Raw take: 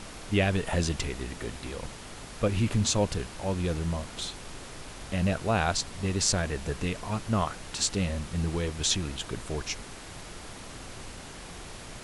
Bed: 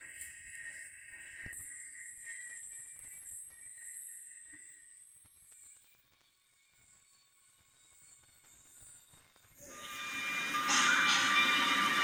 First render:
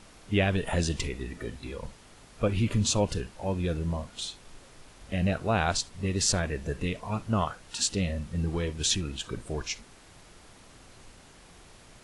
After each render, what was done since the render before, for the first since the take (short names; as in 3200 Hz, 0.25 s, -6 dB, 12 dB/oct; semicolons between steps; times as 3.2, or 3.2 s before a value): noise print and reduce 10 dB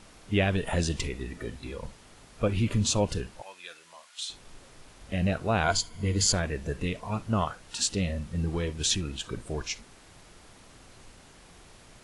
3.42–4.3 HPF 1500 Hz; 5.63–6.34 ripple EQ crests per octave 1.8, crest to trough 11 dB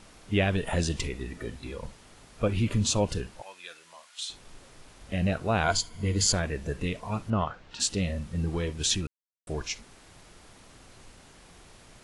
7.3–7.8 air absorption 170 m; 9.07–9.47 mute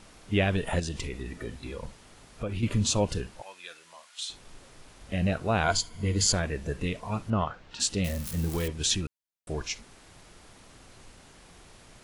0.79–2.63 compressor 3:1, threshold -30 dBFS; 8.04–8.68 switching spikes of -26 dBFS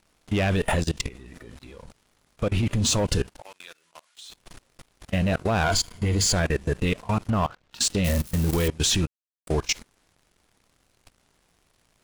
sample leveller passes 3; level quantiser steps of 22 dB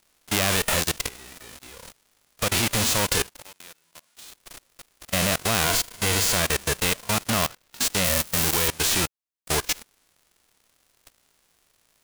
spectral whitening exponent 0.3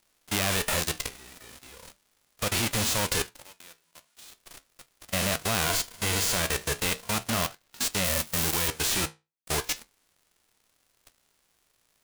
flange 0.38 Hz, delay 8.6 ms, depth 8 ms, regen -63%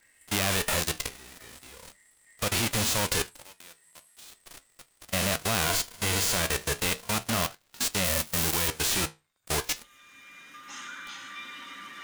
add bed -13 dB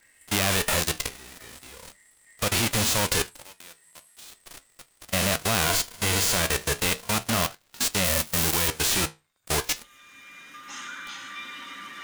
gain +3 dB